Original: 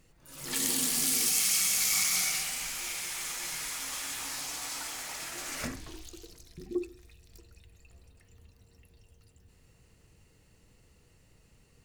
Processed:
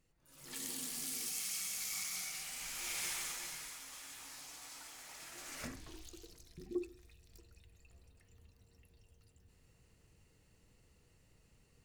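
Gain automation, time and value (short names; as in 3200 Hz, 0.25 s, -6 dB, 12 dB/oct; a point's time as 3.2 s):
2.32 s -13.5 dB
3.06 s -2 dB
3.85 s -14 dB
4.95 s -14 dB
6.05 s -6 dB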